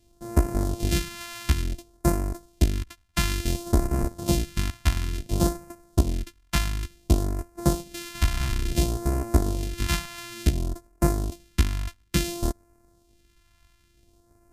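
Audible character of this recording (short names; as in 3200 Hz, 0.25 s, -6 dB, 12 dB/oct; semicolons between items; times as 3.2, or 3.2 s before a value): a buzz of ramps at a fixed pitch in blocks of 128 samples; phasing stages 2, 0.57 Hz, lowest notch 420–3200 Hz; MP3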